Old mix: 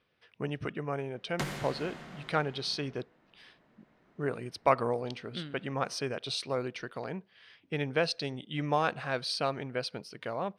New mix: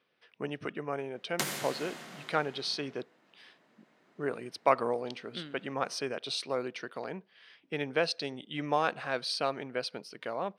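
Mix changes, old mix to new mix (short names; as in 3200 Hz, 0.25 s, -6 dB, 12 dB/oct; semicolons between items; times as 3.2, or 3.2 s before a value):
background: remove LPF 2300 Hz 6 dB/oct; master: add HPF 210 Hz 12 dB/oct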